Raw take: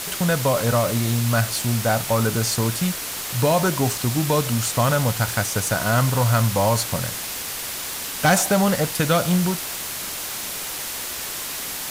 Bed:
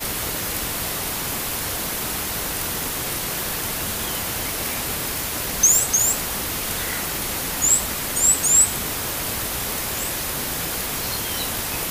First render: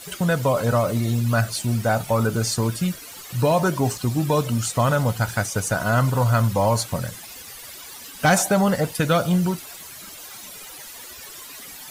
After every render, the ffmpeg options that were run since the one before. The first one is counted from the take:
ffmpeg -i in.wav -af "afftdn=noise_reduction=14:noise_floor=-30" out.wav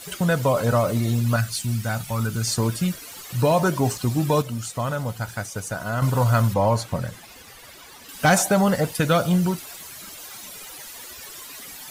ffmpeg -i in.wav -filter_complex "[0:a]asettb=1/sr,asplit=3[link_01][link_02][link_03];[link_01]atrim=end=1.364[link_04];[link_02]atrim=start=1.36:end=2.48,asetpts=PTS-STARTPTS,afade=type=in:duration=0.004:curve=qsin,afade=type=out:start_time=1.116:duration=0.004:curve=qsin,equalizer=frequency=540:width=0.69:gain=-12[link_05];[link_03]atrim=start=2.476[link_06];[link_04][link_05]acrossfade=duration=0.004:curve1=hsin:curve2=qsin[link_07];[link_07][link_06]acrossfade=duration=0.004:curve1=qsin:curve2=hsin,asettb=1/sr,asplit=3[link_08][link_09][link_10];[link_08]atrim=end=6.544[link_11];[link_09]atrim=start=6.54:end=8.09,asetpts=PTS-STARTPTS,afade=type=in:duration=0.004:curve=qsin,afade=type=out:start_time=1.546:duration=0.004:curve=qsin,highshelf=frequency=4100:gain=-10[link_12];[link_10]atrim=start=8.086[link_13];[link_11][link_12]acrossfade=duration=0.004:curve1=hsin:curve2=qsin[link_14];[link_14][link_13]acrossfade=duration=0.004:curve1=qsin:curve2=hsin,asplit=3[link_15][link_16][link_17];[link_15]atrim=end=4.422[link_18];[link_16]atrim=start=4.418:end=6.022,asetpts=PTS-STARTPTS,volume=-6.5dB[link_19];[link_17]atrim=start=6.018[link_20];[link_18][link_19]acrossfade=duration=0.004:curve1=hsin:curve2=hsin[link_21];[link_21][link_20]acrossfade=duration=0.004:curve1=hsin:curve2=hsin" out.wav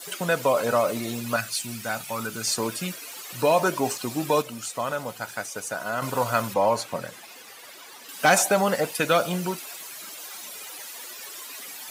ffmpeg -i in.wav -af "adynamicequalizer=threshold=0.00282:dfrequency=2500:dqfactor=7.9:tfrequency=2500:tqfactor=7.9:attack=5:release=100:ratio=0.375:range=3:mode=boostabove:tftype=bell,highpass=310" out.wav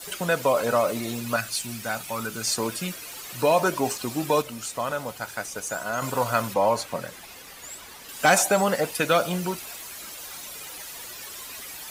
ffmpeg -i in.wav -i bed.wav -filter_complex "[1:a]volume=-24.5dB[link_01];[0:a][link_01]amix=inputs=2:normalize=0" out.wav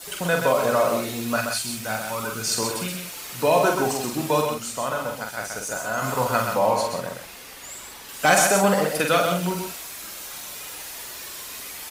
ffmpeg -i in.wav -filter_complex "[0:a]asplit=2[link_01][link_02];[link_02]adelay=46,volume=-4.5dB[link_03];[link_01][link_03]amix=inputs=2:normalize=0,aecho=1:1:128:0.531" out.wav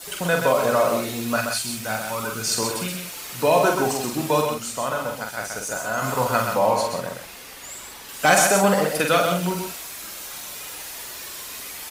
ffmpeg -i in.wav -af "volume=1dB" out.wav

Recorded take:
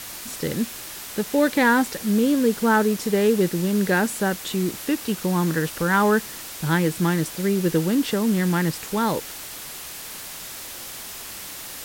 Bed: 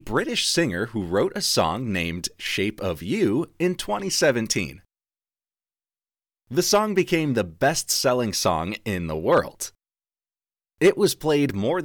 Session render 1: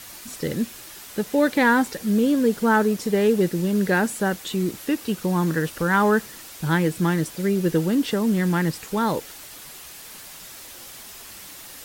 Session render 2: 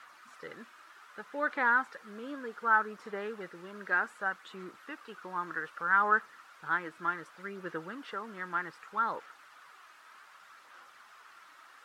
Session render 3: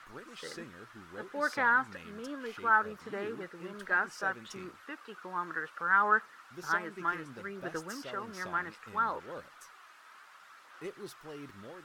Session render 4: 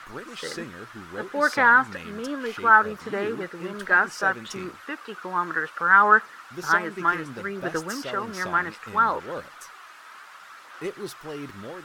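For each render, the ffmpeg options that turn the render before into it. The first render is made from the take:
ffmpeg -i in.wav -af "afftdn=noise_reduction=6:noise_floor=-37" out.wav
ffmpeg -i in.wav -af "aphaser=in_gain=1:out_gain=1:delay=3.2:decay=0.28:speed=0.65:type=sinusoidal,bandpass=frequency=1300:width_type=q:width=3.7:csg=0" out.wav
ffmpeg -i in.wav -i bed.wav -filter_complex "[1:a]volume=-25.5dB[link_01];[0:a][link_01]amix=inputs=2:normalize=0" out.wav
ffmpeg -i in.wav -af "volume=10dB" out.wav

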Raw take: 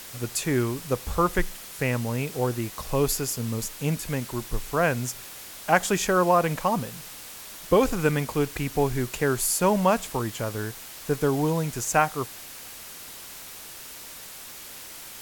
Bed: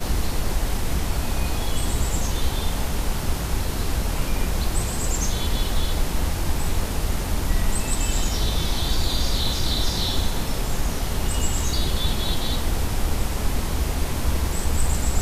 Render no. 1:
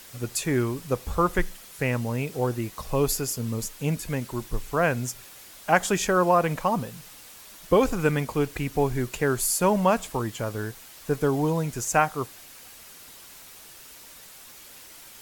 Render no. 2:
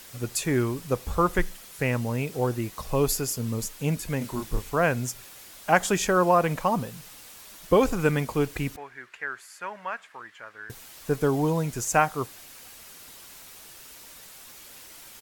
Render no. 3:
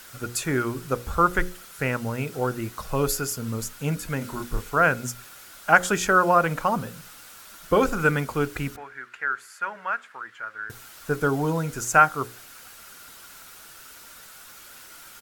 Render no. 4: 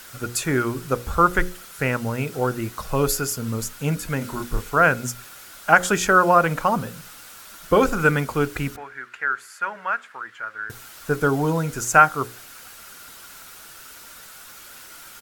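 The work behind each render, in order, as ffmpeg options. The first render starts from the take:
ffmpeg -i in.wav -af "afftdn=noise_reduction=6:noise_floor=-42" out.wav
ffmpeg -i in.wav -filter_complex "[0:a]asplit=3[link_01][link_02][link_03];[link_01]afade=type=out:start_time=4.2:duration=0.02[link_04];[link_02]asplit=2[link_05][link_06];[link_06]adelay=29,volume=-4dB[link_07];[link_05][link_07]amix=inputs=2:normalize=0,afade=type=in:start_time=4.2:duration=0.02,afade=type=out:start_time=4.69:duration=0.02[link_08];[link_03]afade=type=in:start_time=4.69:duration=0.02[link_09];[link_04][link_08][link_09]amix=inputs=3:normalize=0,asettb=1/sr,asplit=3[link_10][link_11][link_12];[link_10]atrim=end=8.764[link_13];[link_11]atrim=start=8.76:end=10.7,asetpts=PTS-STARTPTS,afade=type=in:duration=0.004:curve=qsin,afade=type=out:start_time=1.936:duration=0.004:curve=qsin,bandpass=frequency=1700:width_type=q:width=2.8[link_14];[link_12]atrim=start=10.696[link_15];[link_13][link_14]acrossfade=duration=0.004:curve1=hsin:curve2=qsin[link_16];[link_16][link_15]acrossfade=duration=0.004:curve1=qsin:curve2=hsin" out.wav
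ffmpeg -i in.wav -af "equalizer=frequency=1400:width=4.5:gain=12,bandreject=frequency=60:width_type=h:width=6,bandreject=frequency=120:width_type=h:width=6,bandreject=frequency=180:width_type=h:width=6,bandreject=frequency=240:width_type=h:width=6,bandreject=frequency=300:width_type=h:width=6,bandreject=frequency=360:width_type=h:width=6,bandreject=frequency=420:width_type=h:width=6,bandreject=frequency=480:width_type=h:width=6,bandreject=frequency=540:width_type=h:width=6" out.wav
ffmpeg -i in.wav -af "volume=3dB,alimiter=limit=-1dB:level=0:latency=1" out.wav

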